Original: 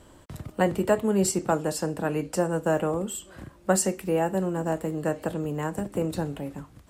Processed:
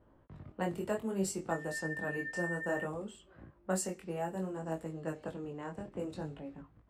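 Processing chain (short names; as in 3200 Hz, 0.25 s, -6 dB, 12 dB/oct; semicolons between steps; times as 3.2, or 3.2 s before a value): 1.5–2.83 whine 1800 Hz -27 dBFS; chorus 0.61 Hz, delay 18 ms, depth 5.4 ms; low-pass opened by the level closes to 1300 Hz, open at -24.5 dBFS; gain -8.5 dB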